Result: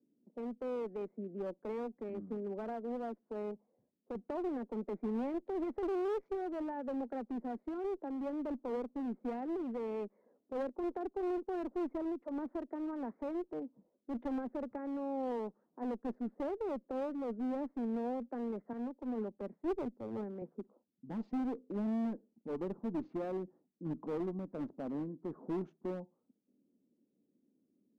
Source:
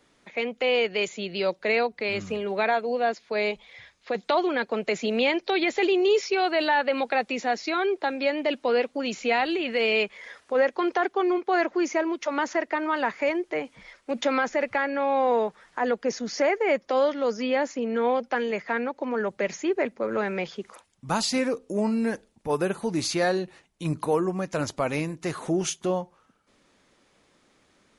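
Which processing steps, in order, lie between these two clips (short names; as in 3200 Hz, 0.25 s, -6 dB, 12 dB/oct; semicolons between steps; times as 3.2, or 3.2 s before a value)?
Wiener smoothing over 15 samples; low-pass opened by the level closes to 360 Hz, open at -22 dBFS; ladder band-pass 280 Hz, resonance 50%; one-sided clip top -38.5 dBFS, bottom -30.5 dBFS; 18.73–20.42 three-band expander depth 100%; gain +1.5 dB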